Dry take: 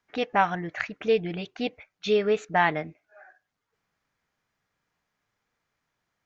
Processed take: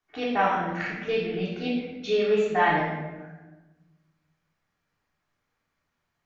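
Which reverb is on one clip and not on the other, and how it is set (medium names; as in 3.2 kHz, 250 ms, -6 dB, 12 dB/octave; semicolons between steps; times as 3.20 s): simulated room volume 640 m³, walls mixed, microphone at 3.4 m; trim -7.5 dB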